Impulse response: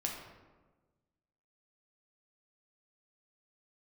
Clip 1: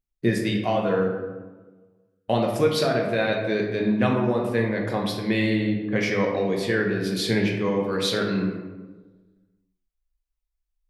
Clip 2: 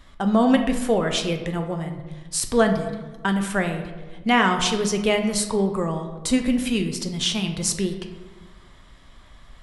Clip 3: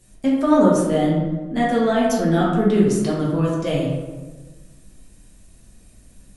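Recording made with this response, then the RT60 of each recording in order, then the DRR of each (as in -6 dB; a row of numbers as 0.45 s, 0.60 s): 1; 1.3 s, 1.3 s, 1.3 s; -1.0 dB, 4.5 dB, -6.0 dB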